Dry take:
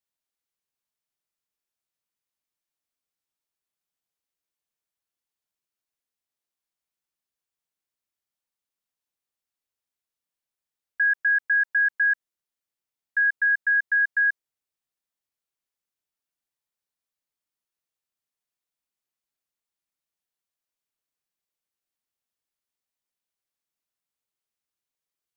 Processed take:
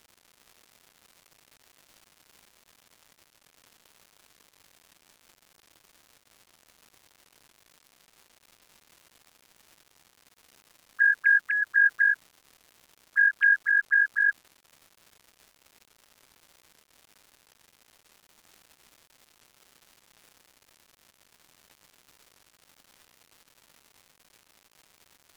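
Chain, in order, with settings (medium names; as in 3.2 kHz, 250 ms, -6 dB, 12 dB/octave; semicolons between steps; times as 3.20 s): formants replaced by sine waves; crackle 300 per s -42 dBFS; MP3 112 kbps 44.1 kHz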